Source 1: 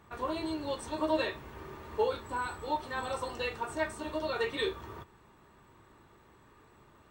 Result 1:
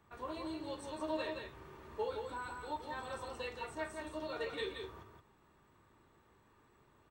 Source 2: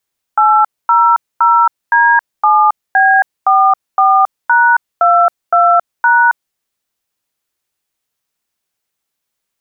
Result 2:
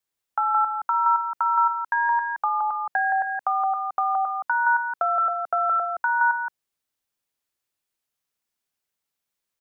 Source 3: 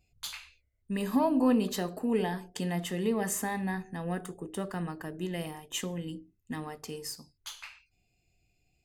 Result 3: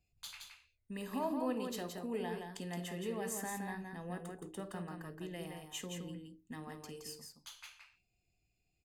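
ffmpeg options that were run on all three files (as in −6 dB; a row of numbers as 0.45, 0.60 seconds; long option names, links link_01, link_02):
-filter_complex "[0:a]acrossover=split=330|1800[link_01][link_02][link_03];[link_01]acompressor=threshold=-35dB:ratio=4[link_04];[link_02]acompressor=threshold=-14dB:ratio=4[link_05];[link_03]acompressor=threshold=-24dB:ratio=4[link_06];[link_04][link_05][link_06]amix=inputs=3:normalize=0,asplit=2[link_07][link_08];[link_08]aecho=0:1:51|170:0.158|0.562[link_09];[link_07][link_09]amix=inputs=2:normalize=0,volume=-9dB"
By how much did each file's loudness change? −8.0, −12.0, −10.0 LU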